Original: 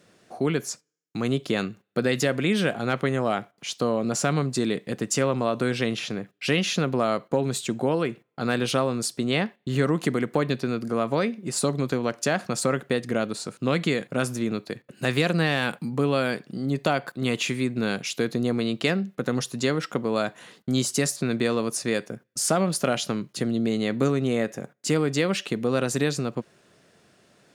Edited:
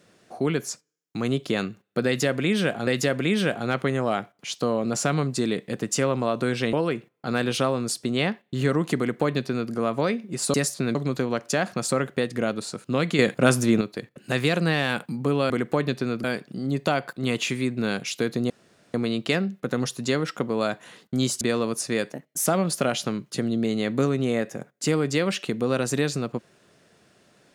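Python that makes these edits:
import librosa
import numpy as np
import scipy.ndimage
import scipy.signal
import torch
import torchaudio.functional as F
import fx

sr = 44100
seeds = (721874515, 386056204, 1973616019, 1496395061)

y = fx.edit(x, sr, fx.repeat(start_s=2.06, length_s=0.81, count=2),
    fx.cut(start_s=5.92, length_s=1.95),
    fx.duplicate(start_s=10.12, length_s=0.74, to_s=16.23),
    fx.clip_gain(start_s=13.92, length_s=0.62, db=7.0),
    fx.insert_room_tone(at_s=18.49, length_s=0.44),
    fx.move(start_s=20.96, length_s=0.41, to_s=11.68),
    fx.speed_span(start_s=22.09, length_s=0.4, speed=1.2), tone=tone)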